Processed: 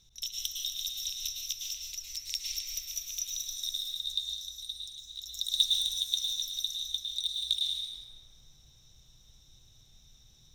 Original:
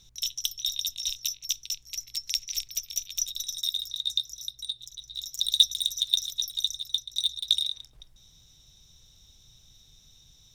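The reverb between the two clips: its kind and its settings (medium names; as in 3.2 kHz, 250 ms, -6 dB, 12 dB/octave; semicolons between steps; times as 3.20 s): plate-style reverb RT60 2.9 s, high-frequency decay 0.35×, pre-delay 95 ms, DRR -3.5 dB; trim -6.5 dB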